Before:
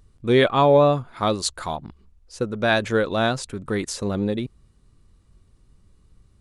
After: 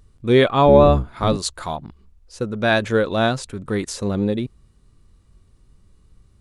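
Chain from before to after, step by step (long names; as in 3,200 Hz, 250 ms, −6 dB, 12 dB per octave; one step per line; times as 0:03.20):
0:00.66–0:01.37: sub-octave generator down 1 octave, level +2 dB
harmonic and percussive parts rebalanced percussive −4 dB
level +3.5 dB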